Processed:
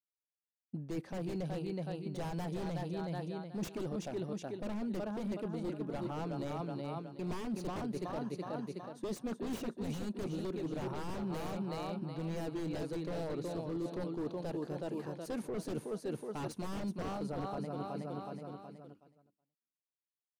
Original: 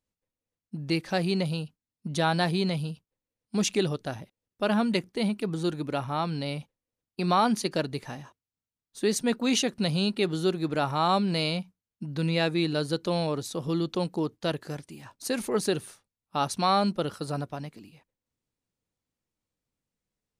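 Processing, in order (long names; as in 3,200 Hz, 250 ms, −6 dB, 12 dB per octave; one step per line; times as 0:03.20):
high-pass filter 480 Hz 6 dB per octave
on a send: repeating echo 371 ms, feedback 46%, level −6.5 dB
on the sum: wave folding −27.5 dBFS
tilt shelving filter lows +10 dB
reversed playback
downward compressor 6 to 1, threshold −39 dBFS, peak gain reduction 16 dB
reversed playback
downward expander −54 dBFS
level +2.5 dB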